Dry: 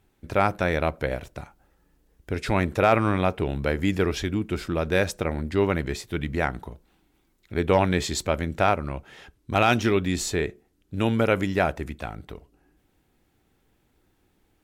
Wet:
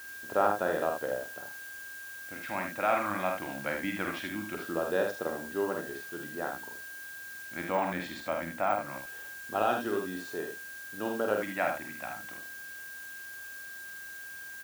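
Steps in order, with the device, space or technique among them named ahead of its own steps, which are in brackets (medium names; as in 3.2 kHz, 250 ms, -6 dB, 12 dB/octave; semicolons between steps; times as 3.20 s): shortwave radio (band-pass 320–2500 Hz; tremolo 0.24 Hz, depth 47%; LFO notch square 0.22 Hz 420–2200 Hz; whistle 1.6 kHz -41 dBFS; white noise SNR 18 dB); 7.64–8.89 s: de-esser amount 100%; treble shelf 11 kHz +4 dB; early reflections 48 ms -5.5 dB, 77 ms -6.5 dB; trim -3.5 dB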